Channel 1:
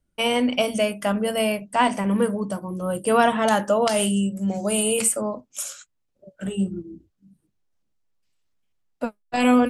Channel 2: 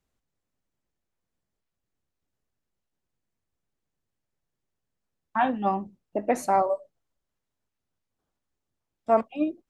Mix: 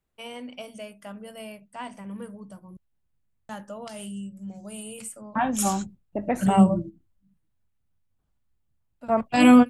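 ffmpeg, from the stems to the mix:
-filter_complex "[0:a]highpass=110,volume=2dB,asplit=3[a][b][c];[a]atrim=end=2.77,asetpts=PTS-STARTPTS,afade=t=out:st=2.766:d=0.004:c=hsin[d];[b]atrim=start=2.77:end=3.49,asetpts=PTS-STARTPTS,volume=0[e];[c]atrim=start=3.49,asetpts=PTS-STARTPTS,afade=t=in:d=0.004:c=hsin[f];[d][e][f]concat=n=3:v=0:a=1[g];[1:a]equalizer=f=5.6k:t=o:w=0.77:g=-7.5,volume=-0.5dB,asplit=2[h][i];[i]apad=whole_len=427491[j];[g][j]sidechaingate=range=-19dB:threshold=-43dB:ratio=16:detection=peak[k];[k][h]amix=inputs=2:normalize=0,asubboost=boost=4.5:cutoff=170"

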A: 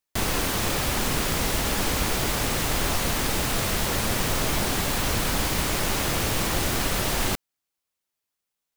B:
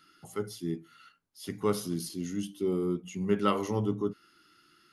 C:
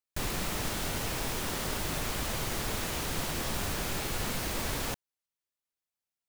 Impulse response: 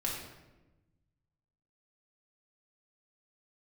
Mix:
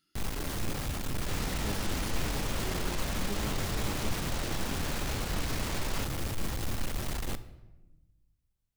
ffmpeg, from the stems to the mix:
-filter_complex "[0:a]lowshelf=f=220:g=10,asoftclip=type=tanh:threshold=-22.5dB,volume=-10dB,asplit=2[a][b];[b]volume=-13dB[c];[1:a]equalizer=f=1k:t=o:w=2.2:g=-13,volume=-9.5dB[d];[2:a]lowpass=7.4k,alimiter=level_in=5.5dB:limit=-24dB:level=0:latency=1,volume=-5.5dB,adelay=1100,volume=1dB[e];[3:a]atrim=start_sample=2205[f];[c][f]afir=irnorm=-1:irlink=0[g];[a][d][e][g]amix=inputs=4:normalize=0"

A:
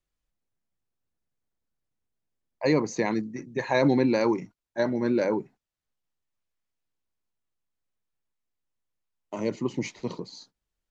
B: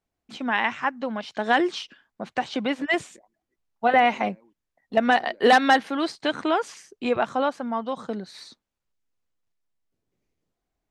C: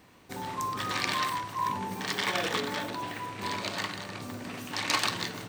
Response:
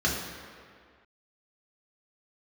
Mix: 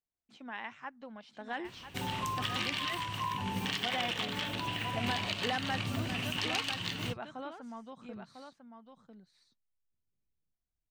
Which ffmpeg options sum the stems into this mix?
-filter_complex "[1:a]volume=-18dB,asplit=2[a][b];[b]volume=-8dB[c];[2:a]equalizer=f=2.9k:w=2.7:g=13.5,adelay=1650,volume=0.5dB,acompressor=threshold=-32dB:ratio=6,volume=0dB[d];[c]aecho=0:1:999:1[e];[a][d][e]amix=inputs=3:normalize=0,asubboost=boost=3.5:cutoff=190"

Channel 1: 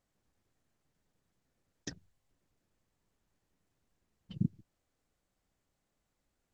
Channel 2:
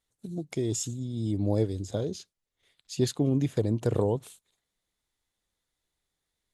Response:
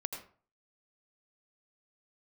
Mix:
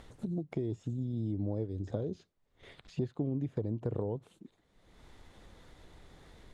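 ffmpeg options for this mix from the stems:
-filter_complex "[0:a]highpass=f=310:w=0.5412,highpass=f=310:w=1.3066,volume=-7dB[a];[1:a]tiltshelf=f=1.1k:g=3.5,acompressor=mode=upward:threshold=-29dB:ratio=2.5,volume=-1.5dB[b];[a][b]amix=inputs=2:normalize=0,acrossover=split=2600[c][d];[d]acompressor=threshold=-51dB:ratio=4:attack=1:release=60[e];[c][e]amix=inputs=2:normalize=0,aemphasis=mode=reproduction:type=75fm,acompressor=threshold=-32dB:ratio=4"

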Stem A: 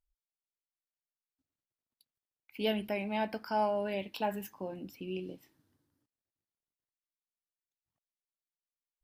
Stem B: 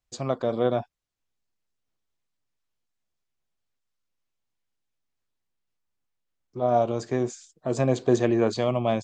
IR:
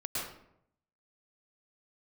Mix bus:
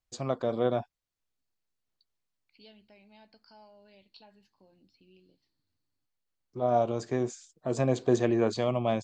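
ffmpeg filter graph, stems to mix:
-filter_complex "[0:a]equalizer=f=70:t=o:w=1.7:g=9,acompressor=threshold=-55dB:ratio=1.5,lowpass=f=4.4k:t=q:w=13,volume=-16dB[a];[1:a]volume=-3.5dB[b];[a][b]amix=inputs=2:normalize=0"

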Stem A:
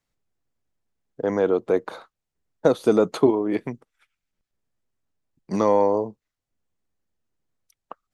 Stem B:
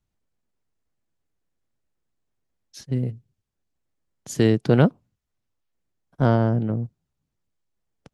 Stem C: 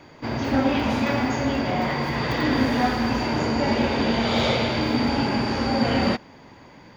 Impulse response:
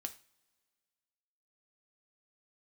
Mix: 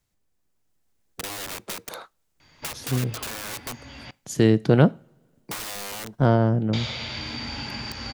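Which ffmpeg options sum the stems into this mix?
-filter_complex "[0:a]acrossover=split=170|3800[a][b][c];[a]acompressor=threshold=-39dB:ratio=4[d];[b]acompressor=threshold=-29dB:ratio=4[e];[c]acompressor=threshold=-57dB:ratio=4[f];[d][e][f]amix=inputs=3:normalize=0,aeval=exprs='(mod(33.5*val(0)+1,2)-1)/33.5':c=same,dynaudnorm=f=120:g=11:m=6dB,volume=-2dB,asplit=3[g][h][i];[h]volume=-17dB[j];[1:a]volume=-3dB,asplit=2[k][l];[l]volume=-3.5dB[m];[2:a]lowpass=6.2k,equalizer=f=420:t=o:w=3:g=-15,adelay=2400,volume=-2dB,asplit=3[n][o][p];[n]atrim=end=4.11,asetpts=PTS-STARTPTS,afade=t=out:st=4.106:d=0.004:c=hsin[q];[o]atrim=start=4.11:end=6.73,asetpts=PTS-STARTPTS,volume=0[r];[p]atrim=start=6.73,asetpts=PTS-STARTPTS,afade=t=in:d=0.004:c=hsin[s];[q][r][s]concat=n=3:v=0:a=1,asplit=2[t][u];[u]volume=-15dB[v];[i]apad=whole_len=412803[w];[t][w]sidechaincompress=threshold=-47dB:ratio=8:attack=39:release=661[x];[g][x]amix=inputs=2:normalize=0,highshelf=f=4.5k:g=9.5,acompressor=threshold=-30dB:ratio=6,volume=0dB[y];[3:a]atrim=start_sample=2205[z];[j][m][v]amix=inputs=3:normalize=0[aa];[aa][z]afir=irnorm=-1:irlink=0[ab];[k][y][ab]amix=inputs=3:normalize=0"

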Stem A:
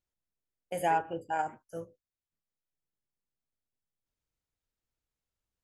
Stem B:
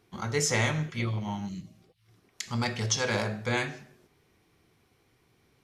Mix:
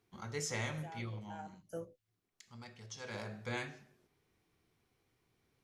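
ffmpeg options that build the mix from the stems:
-filter_complex "[0:a]acompressor=threshold=-39dB:ratio=3,volume=0.5dB[a];[1:a]volume=-0.5dB,afade=t=out:st=1.05:d=0.6:silence=0.298538,afade=t=in:st=2.9:d=0.54:silence=0.266073,asplit=2[b][c];[c]apad=whole_len=248331[d];[a][d]sidechaincompress=threshold=-52dB:ratio=8:attack=16:release=535[e];[e][b]amix=inputs=2:normalize=0"

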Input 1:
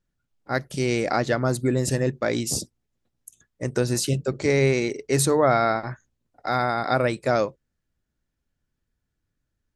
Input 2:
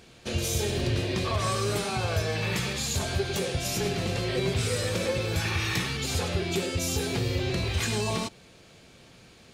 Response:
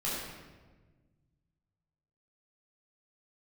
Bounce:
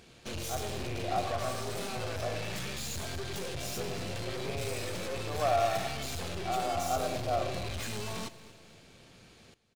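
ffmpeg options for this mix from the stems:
-filter_complex "[0:a]asplit=3[a][b][c];[a]bandpass=f=730:t=q:w=8,volume=0dB[d];[b]bandpass=f=1.09k:t=q:w=8,volume=-6dB[e];[c]bandpass=f=2.44k:t=q:w=8,volume=-9dB[f];[d][e][f]amix=inputs=3:normalize=0,volume=-6.5dB,asplit=2[g][h];[h]volume=-7dB[i];[1:a]aeval=exprs='(tanh(63.1*val(0)+0.65)-tanh(0.65))/63.1':c=same,volume=0dB,asplit=2[j][k];[k]volume=-17.5dB[l];[2:a]atrim=start_sample=2205[m];[i][m]afir=irnorm=-1:irlink=0[n];[l]aecho=0:1:233|466|699|932|1165|1398:1|0.45|0.202|0.0911|0.041|0.0185[o];[g][j][n][o]amix=inputs=4:normalize=0"

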